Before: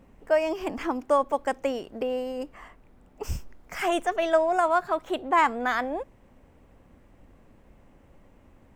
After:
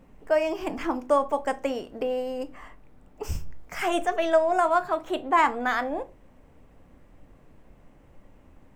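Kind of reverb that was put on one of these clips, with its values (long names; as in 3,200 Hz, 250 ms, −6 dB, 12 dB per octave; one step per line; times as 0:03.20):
rectangular room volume 130 cubic metres, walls furnished, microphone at 0.44 metres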